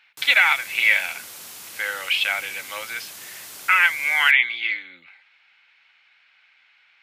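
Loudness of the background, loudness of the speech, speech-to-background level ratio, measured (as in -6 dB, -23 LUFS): -37.0 LUFS, -19.5 LUFS, 17.5 dB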